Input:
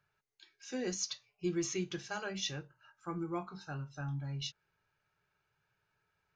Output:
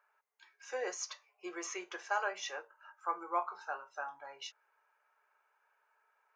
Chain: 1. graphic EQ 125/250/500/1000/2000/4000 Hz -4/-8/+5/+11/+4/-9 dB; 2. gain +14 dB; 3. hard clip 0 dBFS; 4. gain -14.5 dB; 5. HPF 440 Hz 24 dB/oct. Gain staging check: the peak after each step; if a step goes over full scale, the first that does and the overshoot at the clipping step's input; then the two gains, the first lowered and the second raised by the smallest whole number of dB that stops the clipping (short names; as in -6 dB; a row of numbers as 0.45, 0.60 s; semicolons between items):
-19.5, -5.5, -5.5, -20.0, -20.0 dBFS; no overload